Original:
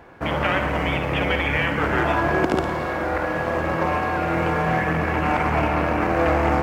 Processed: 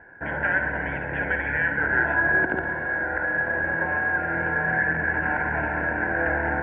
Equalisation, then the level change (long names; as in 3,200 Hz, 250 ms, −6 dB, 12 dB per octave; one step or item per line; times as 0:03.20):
Butterworth band-reject 1,200 Hz, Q 3
transistor ladder low-pass 1,700 Hz, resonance 80%
+4.0 dB